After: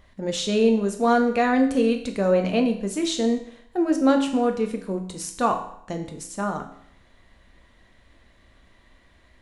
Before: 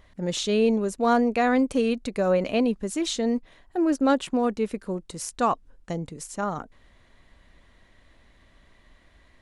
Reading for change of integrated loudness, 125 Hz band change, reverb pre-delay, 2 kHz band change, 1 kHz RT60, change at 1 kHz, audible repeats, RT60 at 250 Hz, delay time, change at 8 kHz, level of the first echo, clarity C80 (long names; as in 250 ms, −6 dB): +2.0 dB, +2.0 dB, 6 ms, +2.0 dB, 0.70 s, +1.5 dB, no echo audible, 0.65 s, no echo audible, +1.0 dB, no echo audible, 12.5 dB